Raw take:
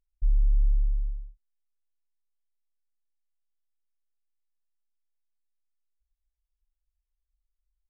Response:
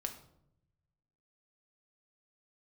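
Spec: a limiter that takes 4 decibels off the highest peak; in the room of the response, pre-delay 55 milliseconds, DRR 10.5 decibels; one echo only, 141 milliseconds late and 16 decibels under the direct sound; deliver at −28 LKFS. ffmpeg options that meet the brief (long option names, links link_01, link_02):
-filter_complex "[0:a]alimiter=limit=-20dB:level=0:latency=1,aecho=1:1:141:0.158,asplit=2[link_01][link_02];[1:a]atrim=start_sample=2205,adelay=55[link_03];[link_02][link_03]afir=irnorm=-1:irlink=0,volume=-9.5dB[link_04];[link_01][link_04]amix=inputs=2:normalize=0,volume=2dB"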